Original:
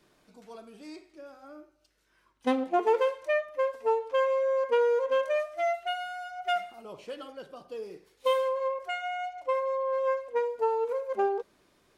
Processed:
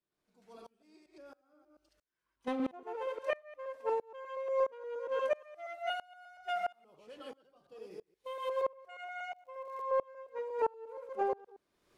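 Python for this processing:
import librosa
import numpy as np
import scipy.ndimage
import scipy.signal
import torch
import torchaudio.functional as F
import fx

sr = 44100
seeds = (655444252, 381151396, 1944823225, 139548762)

p1 = fx.reverse_delay(x, sr, ms=118, wet_db=-2)
p2 = 10.0 ** (-20.0 / 20.0) * np.tanh(p1 / 10.0 ** (-20.0 / 20.0))
p3 = p1 + (p2 * 10.0 ** (-9.0 / 20.0))
p4 = fx.dmg_crackle(p3, sr, seeds[0], per_s=87.0, level_db=-35.0, at=(9.34, 9.81), fade=0.02)
p5 = fx.dynamic_eq(p4, sr, hz=1100.0, q=0.78, threshold_db=-35.0, ratio=4.0, max_db=3)
p6 = fx.tremolo_decay(p5, sr, direction='swelling', hz=1.5, depth_db=27)
y = p6 * 10.0 ** (-6.5 / 20.0)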